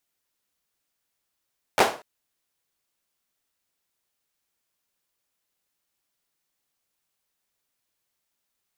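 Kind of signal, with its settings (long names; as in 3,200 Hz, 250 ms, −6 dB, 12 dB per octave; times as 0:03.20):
synth clap length 0.24 s, bursts 3, apart 11 ms, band 620 Hz, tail 0.34 s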